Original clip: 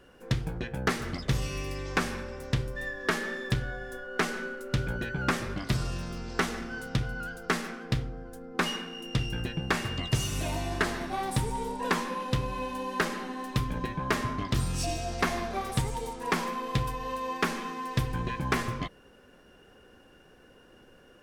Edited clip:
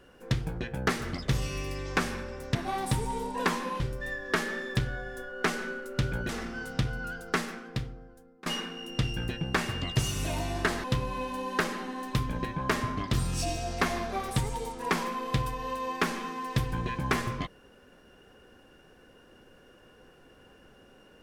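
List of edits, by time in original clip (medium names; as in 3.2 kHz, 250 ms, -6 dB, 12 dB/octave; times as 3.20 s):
5.04–6.45 s: delete
7.44–8.62 s: fade out, to -22.5 dB
11.00–12.25 s: move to 2.55 s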